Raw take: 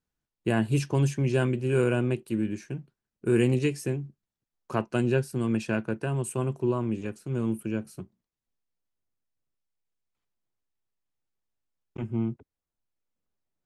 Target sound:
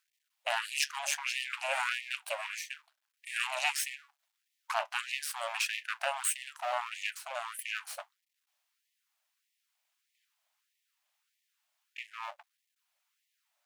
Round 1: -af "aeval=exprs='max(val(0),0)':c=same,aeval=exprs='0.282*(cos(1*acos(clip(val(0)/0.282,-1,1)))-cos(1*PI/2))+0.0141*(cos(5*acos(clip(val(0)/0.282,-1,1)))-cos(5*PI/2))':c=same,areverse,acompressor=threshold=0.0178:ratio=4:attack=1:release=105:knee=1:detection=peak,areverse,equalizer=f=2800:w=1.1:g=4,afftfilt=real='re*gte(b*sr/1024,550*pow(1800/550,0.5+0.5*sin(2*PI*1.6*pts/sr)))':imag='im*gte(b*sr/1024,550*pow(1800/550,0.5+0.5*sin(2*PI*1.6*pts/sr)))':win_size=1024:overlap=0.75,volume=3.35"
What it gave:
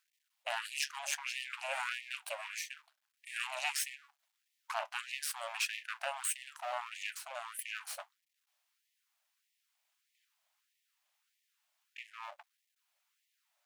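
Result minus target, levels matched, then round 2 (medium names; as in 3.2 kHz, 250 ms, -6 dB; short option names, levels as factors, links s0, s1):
compression: peak gain reduction +5 dB
-af "aeval=exprs='max(val(0),0)':c=same,aeval=exprs='0.282*(cos(1*acos(clip(val(0)/0.282,-1,1)))-cos(1*PI/2))+0.0141*(cos(5*acos(clip(val(0)/0.282,-1,1)))-cos(5*PI/2))':c=same,areverse,acompressor=threshold=0.0398:ratio=4:attack=1:release=105:knee=1:detection=peak,areverse,equalizer=f=2800:w=1.1:g=4,afftfilt=real='re*gte(b*sr/1024,550*pow(1800/550,0.5+0.5*sin(2*PI*1.6*pts/sr)))':imag='im*gte(b*sr/1024,550*pow(1800/550,0.5+0.5*sin(2*PI*1.6*pts/sr)))':win_size=1024:overlap=0.75,volume=3.35"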